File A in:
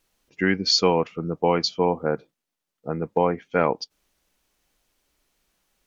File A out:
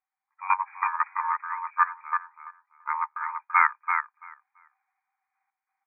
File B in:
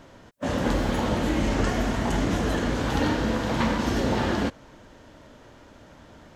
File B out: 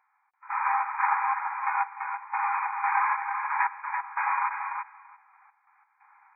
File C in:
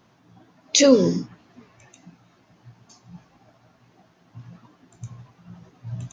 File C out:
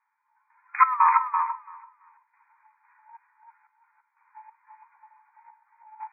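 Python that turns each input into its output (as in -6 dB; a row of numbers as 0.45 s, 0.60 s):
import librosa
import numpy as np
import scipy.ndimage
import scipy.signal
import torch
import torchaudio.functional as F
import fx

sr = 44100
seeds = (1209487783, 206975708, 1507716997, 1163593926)

p1 = np.clip(x, -10.0 ** (-19.5 / 20.0), 10.0 ** (-19.5 / 20.0))
p2 = x + F.gain(torch.from_numpy(p1), -4.5).numpy()
p3 = fx.quant_float(p2, sr, bits=2)
p4 = fx.step_gate(p3, sr, bpm=90, pattern='...xx.xx..x', floor_db=-12.0, edge_ms=4.5)
p5 = p4 * np.sin(2.0 * np.pi * 750.0 * np.arange(len(p4)) / sr)
p6 = fx.brickwall_bandpass(p5, sr, low_hz=750.0, high_hz=2500.0)
p7 = p6 + fx.echo_feedback(p6, sr, ms=336, feedback_pct=22, wet_db=-4.0, dry=0)
p8 = fx.upward_expand(p7, sr, threshold_db=-41.0, expansion=1.5)
y = p8 * 10.0 ** (-30 / 20.0) / np.sqrt(np.mean(np.square(p8)))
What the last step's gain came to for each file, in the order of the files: +5.5 dB, +1.5 dB, +7.0 dB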